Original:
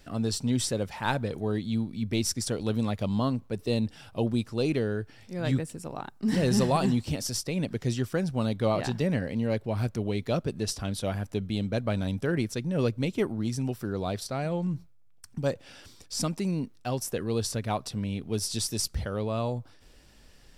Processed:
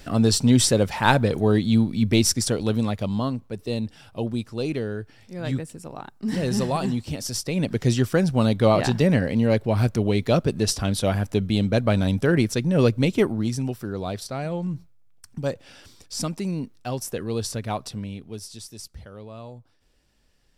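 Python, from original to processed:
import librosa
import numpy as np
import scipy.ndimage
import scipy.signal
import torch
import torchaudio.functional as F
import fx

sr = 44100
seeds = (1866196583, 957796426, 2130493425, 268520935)

y = fx.gain(x, sr, db=fx.line((2.04, 10.0), (3.46, 0.0), (7.09, 0.0), (7.84, 8.0), (13.15, 8.0), (13.83, 1.5), (17.88, 1.5), (18.59, -10.0)))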